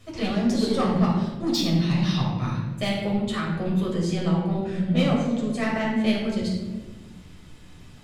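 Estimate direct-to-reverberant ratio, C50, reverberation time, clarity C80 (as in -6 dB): -4.5 dB, 2.5 dB, 1.3 s, 4.5 dB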